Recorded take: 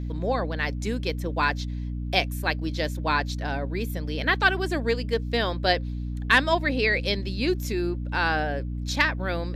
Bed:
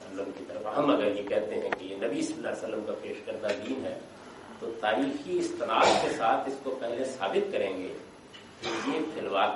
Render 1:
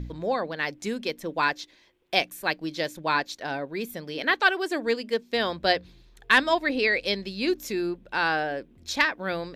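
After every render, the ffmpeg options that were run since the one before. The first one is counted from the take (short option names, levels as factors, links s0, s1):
-af "bandreject=f=60:t=h:w=4,bandreject=f=120:t=h:w=4,bandreject=f=180:t=h:w=4,bandreject=f=240:t=h:w=4,bandreject=f=300:t=h:w=4"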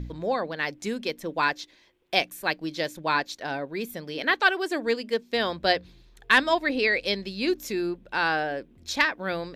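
-af anull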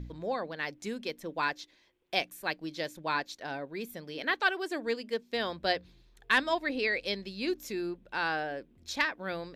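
-af "volume=0.473"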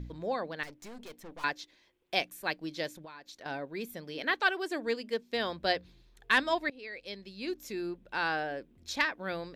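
-filter_complex "[0:a]asettb=1/sr,asplit=3[s0][s1][s2];[s0]atrim=end=0.634[s3];[s1]atrim=start=0.63:end=1.44,asetpts=PTS-STARTPTS,afade=t=in:d=0.004:c=qsin,afade=t=out:st=0.806:d=0.004:c=qsin,aeval=exprs='(tanh(158*val(0)+0.6)-tanh(0.6))/158':c=same[s4];[s2]atrim=start=1.436[s5];[s3][s4]acrossfade=d=0.004:c1=hsin:c2=qsin[s6];[s6][s5]acrossfade=d=0.004:c1=qsin:c2=hsin,asettb=1/sr,asplit=3[s7][s8][s9];[s7]atrim=end=2.934[s10];[s8]atrim=start=2.93:end=3.46,asetpts=PTS-STARTPTS,afade=t=in:d=0.004:c=qsin,afade=t=out:st=0.526:d=0.004:c=qsin,acompressor=threshold=0.00631:ratio=10:attack=3.2:release=140:knee=1:detection=peak[s11];[s9]atrim=start=3.456[s12];[s10][s11]acrossfade=d=0.004:c1=hsin:c2=qsin[s13];[s13][s12]acrossfade=d=0.004:c1=qsin:c2=hsin,asplit=2[s14][s15];[s14]atrim=end=6.7,asetpts=PTS-STARTPTS,afade=t=out:st=6.696:d=0.004:c=hsin:silence=0.0891251[s16];[s15]atrim=start=6.7,asetpts=PTS-STARTPTS,afade=t=in:d=1.37:silence=0.0891251[s17];[s16][s17]concat=n=2:v=0:a=1"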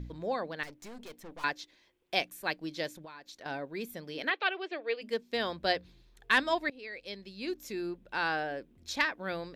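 -filter_complex "[0:a]asplit=3[s0][s1][s2];[s0]afade=t=out:st=4.29:d=0.02[s3];[s1]highpass=f=390:w=0.5412,highpass=f=390:w=1.3066,equalizer=f=950:t=q:w=4:g=-8,equalizer=f=1600:t=q:w=4:g=-5,equalizer=f=2500:t=q:w=4:g=6,lowpass=f=3900:w=0.5412,lowpass=f=3900:w=1.3066,afade=t=in:st=4.29:d=0.02,afade=t=out:st=5.01:d=0.02[s4];[s2]afade=t=in:st=5.01:d=0.02[s5];[s3][s4][s5]amix=inputs=3:normalize=0"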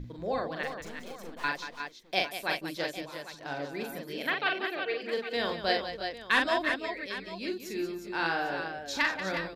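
-af "aecho=1:1:42|185|336|361|803:0.631|0.316|0.211|0.422|0.2"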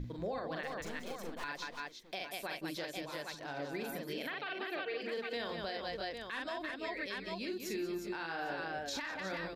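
-af "acompressor=threshold=0.0282:ratio=6,alimiter=level_in=2:limit=0.0631:level=0:latency=1:release=98,volume=0.501"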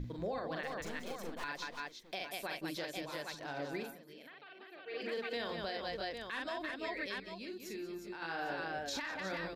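-filter_complex "[0:a]asplit=5[s0][s1][s2][s3][s4];[s0]atrim=end=3.96,asetpts=PTS-STARTPTS,afade=t=out:st=3.78:d=0.18:silence=0.199526[s5];[s1]atrim=start=3.96:end=4.83,asetpts=PTS-STARTPTS,volume=0.2[s6];[s2]atrim=start=4.83:end=7.202,asetpts=PTS-STARTPTS,afade=t=in:d=0.18:silence=0.199526[s7];[s3]atrim=start=7.198:end=8.222,asetpts=PTS-STARTPTS,volume=0.531[s8];[s4]atrim=start=8.218[s9];[s5][s6][s7]concat=n=3:v=0:a=1[s10];[s10][s8]acrossfade=d=0.004:c1=hsin:c2=hsin[s11];[s11][s9]acrossfade=d=0.004:c1=hsin:c2=hsin"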